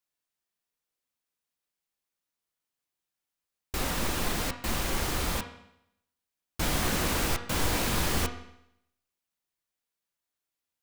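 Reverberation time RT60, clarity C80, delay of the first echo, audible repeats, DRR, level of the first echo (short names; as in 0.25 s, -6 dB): 0.80 s, 12.5 dB, none, none, 5.5 dB, none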